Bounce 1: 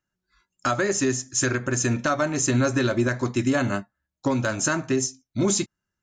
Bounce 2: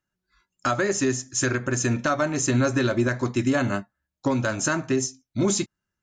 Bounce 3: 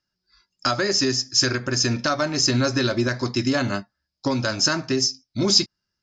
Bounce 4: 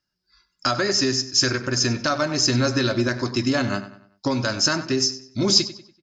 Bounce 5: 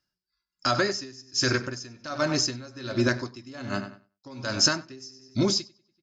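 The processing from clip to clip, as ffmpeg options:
ffmpeg -i in.wav -af "highshelf=frequency=7300:gain=-4" out.wav
ffmpeg -i in.wav -af "lowpass=frequency=5000:width_type=q:width=12" out.wav
ffmpeg -i in.wav -filter_complex "[0:a]asplit=2[link_01][link_02];[link_02]adelay=96,lowpass=frequency=4700:poles=1,volume=-13.5dB,asplit=2[link_03][link_04];[link_04]adelay=96,lowpass=frequency=4700:poles=1,volume=0.41,asplit=2[link_05][link_06];[link_06]adelay=96,lowpass=frequency=4700:poles=1,volume=0.41,asplit=2[link_07][link_08];[link_08]adelay=96,lowpass=frequency=4700:poles=1,volume=0.41[link_09];[link_01][link_03][link_05][link_07][link_09]amix=inputs=5:normalize=0" out.wav
ffmpeg -i in.wav -af "aeval=exprs='val(0)*pow(10,-23*(0.5-0.5*cos(2*PI*1.3*n/s))/20)':channel_layout=same" out.wav

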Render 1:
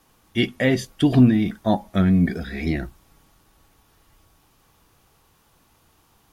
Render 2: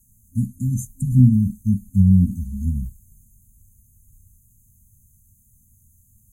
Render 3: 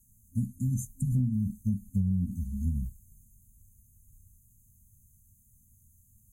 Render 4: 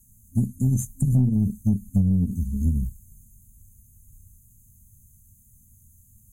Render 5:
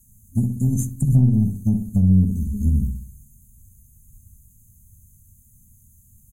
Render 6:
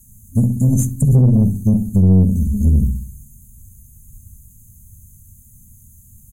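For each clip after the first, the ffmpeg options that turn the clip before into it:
ffmpeg -i in.wav -af "afftfilt=real='re*(1-between(b*sr/4096,260,6200))':imag='im*(1-between(b*sr/4096,260,6200))':win_size=4096:overlap=0.75,equalizer=frequency=100:width_type=o:width=0.33:gain=5,equalizer=frequency=160:width_type=o:width=0.33:gain=-10,equalizer=frequency=250:width_type=o:width=0.33:gain=-10,equalizer=frequency=5000:width_type=o:width=0.33:gain=-11,volume=7dB" out.wav
ffmpeg -i in.wav -af "acompressor=threshold=-18dB:ratio=12,volume=-5.5dB" out.wav
ffmpeg -i in.wav -af "aeval=exprs='0.126*(cos(1*acos(clip(val(0)/0.126,-1,1)))-cos(1*PI/2))+0.00708*(cos(4*acos(clip(val(0)/0.126,-1,1)))-cos(4*PI/2))+0.000891*(cos(7*acos(clip(val(0)/0.126,-1,1)))-cos(7*PI/2))':channel_layout=same,volume=7.5dB" out.wav
ffmpeg -i in.wav -filter_complex "[0:a]asplit=2[link_01][link_02];[link_02]adelay=64,lowpass=frequency=870:poles=1,volume=-5.5dB,asplit=2[link_03][link_04];[link_04]adelay=64,lowpass=frequency=870:poles=1,volume=0.48,asplit=2[link_05][link_06];[link_06]adelay=64,lowpass=frequency=870:poles=1,volume=0.48,asplit=2[link_07][link_08];[link_08]adelay=64,lowpass=frequency=870:poles=1,volume=0.48,asplit=2[link_09][link_10];[link_10]adelay=64,lowpass=frequency=870:poles=1,volume=0.48,asplit=2[link_11][link_12];[link_12]adelay=64,lowpass=frequency=870:poles=1,volume=0.48[link_13];[link_01][link_03][link_05][link_07][link_09][link_11][link_13]amix=inputs=7:normalize=0,volume=1.5dB" out.wav
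ffmpeg -i in.wav -af "asoftclip=type=tanh:threshold=-13.5dB,volume=7.5dB" out.wav

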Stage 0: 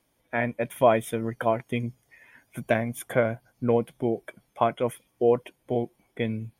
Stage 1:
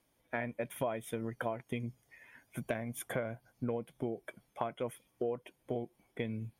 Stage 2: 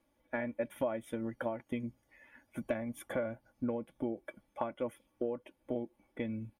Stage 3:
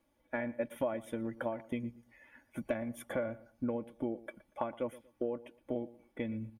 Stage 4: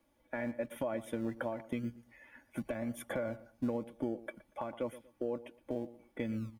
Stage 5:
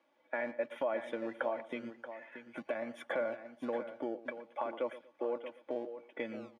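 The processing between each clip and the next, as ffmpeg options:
ffmpeg -i in.wav -af "acompressor=threshold=-29dB:ratio=5,volume=-4dB" out.wav
ffmpeg -i in.wav -af "highshelf=frequency=2700:gain=-10,aecho=1:1:3.5:0.61" out.wav
ffmpeg -i in.wav -filter_complex "[0:a]asplit=2[link_01][link_02];[link_02]adelay=118,lowpass=frequency=2600:poles=1,volume=-18dB,asplit=2[link_03][link_04];[link_04]adelay=118,lowpass=frequency=2600:poles=1,volume=0.27[link_05];[link_01][link_03][link_05]amix=inputs=3:normalize=0" out.wav
ffmpeg -i in.wav -filter_complex "[0:a]acrossover=split=120[link_01][link_02];[link_01]acrusher=samples=40:mix=1:aa=0.000001:lfo=1:lforange=24:lforate=0.92[link_03];[link_02]alimiter=level_in=3.5dB:limit=-24dB:level=0:latency=1:release=144,volume=-3.5dB[link_04];[link_03][link_04]amix=inputs=2:normalize=0,volume=2dB" out.wav
ffmpeg -i in.wav -filter_complex "[0:a]highpass=450,lowpass=3600,asplit=2[link_01][link_02];[link_02]aecho=0:1:630:0.282[link_03];[link_01][link_03]amix=inputs=2:normalize=0,volume=4dB" out.wav

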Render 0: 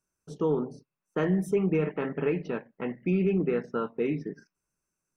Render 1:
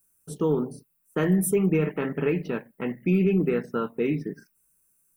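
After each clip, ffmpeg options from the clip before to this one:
ffmpeg -i in.wav -af "equalizer=frequency=730:width=0.68:gain=-4.5,aexciter=amount=10.7:drive=2.9:freq=8400,volume=5dB" out.wav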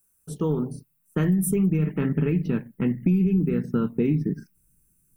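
ffmpeg -i in.wav -filter_complex "[0:a]asubboost=boost=10.5:cutoff=220,acrossover=split=6000[link_01][link_02];[link_01]acompressor=threshold=-19dB:ratio=6[link_03];[link_03][link_02]amix=inputs=2:normalize=0" out.wav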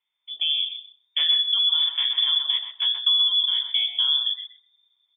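ffmpeg -i in.wav -filter_complex "[0:a]lowpass=frequency=3100:width_type=q:width=0.5098,lowpass=frequency=3100:width_type=q:width=0.6013,lowpass=frequency=3100:width_type=q:width=0.9,lowpass=frequency=3100:width_type=q:width=2.563,afreqshift=-3600,asplit=2[link_01][link_02];[link_02]adelay=128,lowpass=frequency=1400:poles=1,volume=-3dB,asplit=2[link_03][link_04];[link_04]adelay=128,lowpass=frequency=1400:poles=1,volume=0.23,asplit=2[link_05][link_06];[link_06]adelay=128,lowpass=frequency=1400:poles=1,volume=0.23[link_07];[link_03][link_05][link_07]amix=inputs=3:normalize=0[link_08];[link_01][link_08]amix=inputs=2:normalize=0" out.wav

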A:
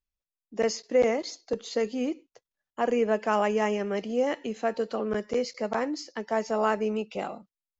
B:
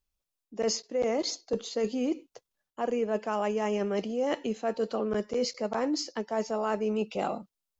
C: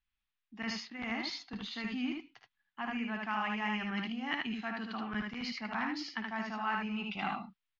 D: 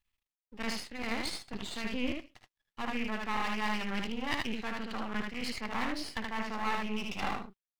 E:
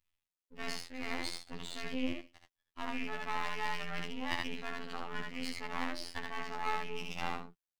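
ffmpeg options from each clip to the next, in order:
ffmpeg -i in.wav -af "equalizer=frequency=1900:width_type=o:width=0.72:gain=-5,areverse,acompressor=threshold=-32dB:ratio=6,areverse,volume=6dB" out.wav
ffmpeg -i in.wav -filter_complex "[0:a]firequalizer=gain_entry='entry(240,0);entry(510,-27);entry(760,-1);entry(1800,10);entry(3500,5);entry(8200,-27)':delay=0.05:min_phase=1,asplit=2[link_01][link_02];[link_02]aecho=0:1:55|76:0.266|0.708[link_03];[link_01][link_03]amix=inputs=2:normalize=0,volume=-5dB" out.wav
ffmpeg -i in.wav -af "bandreject=frequency=1500:width=7.3,aeval=exprs='max(val(0),0)':channel_layout=same,volume=6dB" out.wav
ffmpeg -i in.wav -af "afftfilt=real='hypot(re,im)*cos(PI*b)':imag='0':win_size=2048:overlap=0.75" out.wav

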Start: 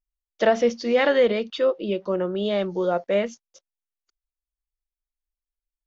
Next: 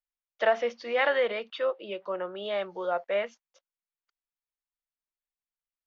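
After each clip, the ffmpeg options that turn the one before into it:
ffmpeg -i in.wav -filter_complex "[0:a]acrossover=split=570 3400:gain=0.112 1 0.141[link_01][link_02][link_03];[link_01][link_02][link_03]amix=inputs=3:normalize=0,volume=-1dB" out.wav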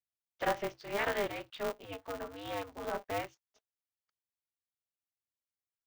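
ffmpeg -i in.wav -af "aeval=exprs='val(0)*sgn(sin(2*PI*100*n/s))':channel_layout=same,volume=-8dB" out.wav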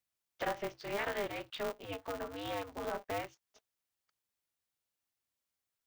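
ffmpeg -i in.wav -af "acompressor=threshold=-47dB:ratio=2,volume=6dB" out.wav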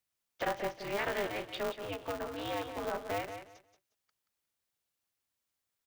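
ffmpeg -i in.wav -af "aecho=1:1:179|358|537:0.355|0.0745|0.0156,volume=2dB" out.wav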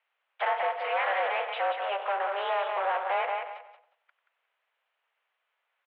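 ffmpeg -i in.wav -filter_complex "[0:a]asplit=2[link_01][link_02];[link_02]highpass=frequency=720:poles=1,volume=21dB,asoftclip=type=tanh:threshold=-22.5dB[link_03];[link_01][link_03]amix=inputs=2:normalize=0,lowpass=frequency=2100:poles=1,volume=-6dB,highpass=frequency=350:width_type=q:width=0.5412,highpass=frequency=350:width_type=q:width=1.307,lowpass=frequency=3000:width_type=q:width=0.5176,lowpass=frequency=3000:width_type=q:width=0.7071,lowpass=frequency=3000:width_type=q:width=1.932,afreqshift=120,asplit=2[link_04][link_05];[link_05]adelay=94,lowpass=frequency=1400:poles=1,volume=-10dB,asplit=2[link_06][link_07];[link_07]adelay=94,lowpass=frequency=1400:poles=1,volume=0.38,asplit=2[link_08][link_09];[link_09]adelay=94,lowpass=frequency=1400:poles=1,volume=0.38,asplit=2[link_10][link_11];[link_11]adelay=94,lowpass=frequency=1400:poles=1,volume=0.38[link_12];[link_04][link_06][link_08][link_10][link_12]amix=inputs=5:normalize=0,volume=2.5dB" out.wav

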